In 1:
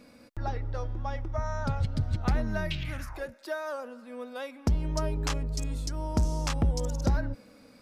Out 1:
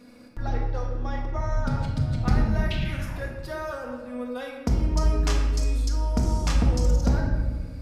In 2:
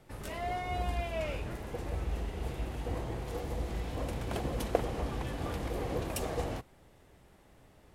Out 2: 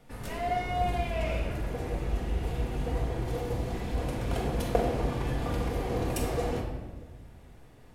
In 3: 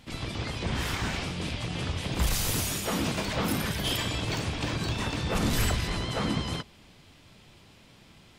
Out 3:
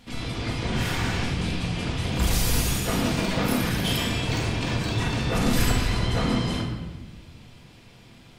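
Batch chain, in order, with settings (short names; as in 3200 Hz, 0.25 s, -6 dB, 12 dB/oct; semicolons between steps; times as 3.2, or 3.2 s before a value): shoebox room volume 970 m³, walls mixed, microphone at 1.8 m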